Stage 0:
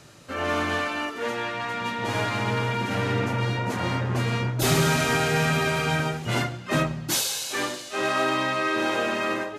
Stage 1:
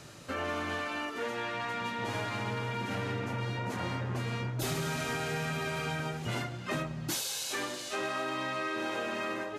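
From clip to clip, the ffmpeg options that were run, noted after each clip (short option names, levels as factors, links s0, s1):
-af "acompressor=threshold=0.0224:ratio=4"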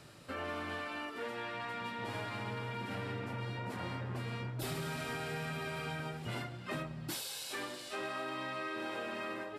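-af "equalizer=f=6400:w=5.7:g=-10.5,volume=0.531"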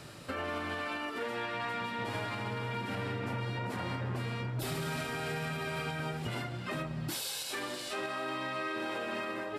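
-af "alimiter=level_in=3.16:limit=0.0631:level=0:latency=1:release=157,volume=0.316,volume=2.24"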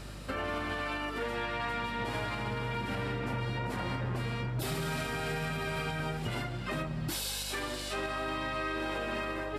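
-af "aeval=exprs='val(0)+0.00501*(sin(2*PI*50*n/s)+sin(2*PI*2*50*n/s)/2+sin(2*PI*3*50*n/s)/3+sin(2*PI*4*50*n/s)/4+sin(2*PI*5*50*n/s)/5)':c=same,volume=1.19"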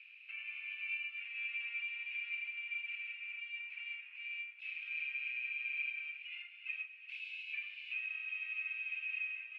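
-af "asuperpass=centerf=2500:order=4:qfactor=6.5,volume=2"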